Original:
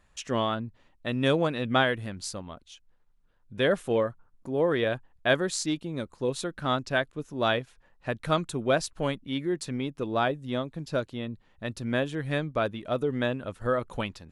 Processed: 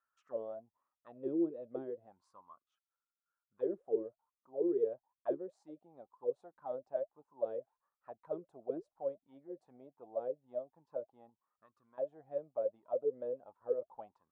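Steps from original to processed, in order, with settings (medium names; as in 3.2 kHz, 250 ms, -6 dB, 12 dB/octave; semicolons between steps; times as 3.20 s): peaking EQ 2.8 kHz -12.5 dB 2.7 oct; 11.29–11.98 s: compression 4:1, threshold -39 dBFS, peak gain reduction 12.5 dB; auto-wah 340–1400 Hz, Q 15, down, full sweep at -22 dBFS; trim +3.5 dB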